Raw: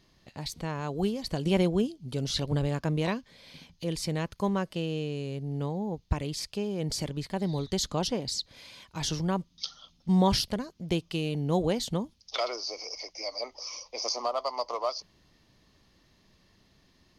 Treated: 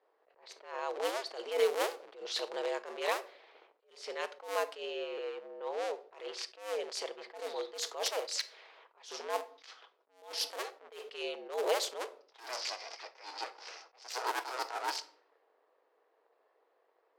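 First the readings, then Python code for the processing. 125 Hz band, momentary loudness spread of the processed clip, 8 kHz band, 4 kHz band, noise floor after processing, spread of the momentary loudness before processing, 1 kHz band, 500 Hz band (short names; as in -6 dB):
under -40 dB, 15 LU, -5.0 dB, -5.0 dB, -74 dBFS, 11 LU, -3.5 dB, -3.5 dB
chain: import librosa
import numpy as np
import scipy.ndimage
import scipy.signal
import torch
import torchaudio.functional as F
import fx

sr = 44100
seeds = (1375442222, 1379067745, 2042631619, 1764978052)

y = fx.cycle_switch(x, sr, every=2, mode='inverted')
y = scipy.signal.sosfilt(scipy.signal.ellip(4, 1.0, 70, 430.0, 'highpass', fs=sr, output='sos'), y)
y = fx.env_lowpass(y, sr, base_hz=1000.0, full_db=-28.5)
y = fx.room_shoebox(y, sr, seeds[0], volume_m3=740.0, walls='furnished', distance_m=0.63)
y = fx.attack_slew(y, sr, db_per_s=130.0)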